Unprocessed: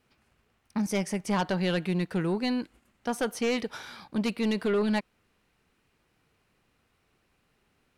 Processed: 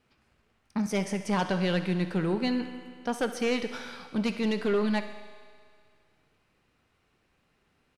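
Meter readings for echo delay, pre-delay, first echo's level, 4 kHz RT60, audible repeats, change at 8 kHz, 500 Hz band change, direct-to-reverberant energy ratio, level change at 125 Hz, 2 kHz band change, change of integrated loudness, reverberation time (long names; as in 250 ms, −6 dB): 67 ms, 4 ms, −15.0 dB, 2.1 s, 2, −2.5 dB, 0.0 dB, 8.0 dB, +0.5 dB, +0.5 dB, 0.0 dB, 2.1 s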